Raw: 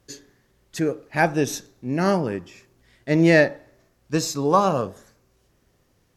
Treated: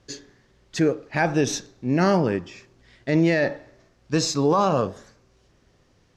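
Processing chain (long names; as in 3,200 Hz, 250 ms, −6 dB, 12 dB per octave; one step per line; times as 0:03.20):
Chebyshev low-pass filter 5,400 Hz, order 2
brickwall limiter −15 dBFS, peak gain reduction 11.5 dB
level +4.5 dB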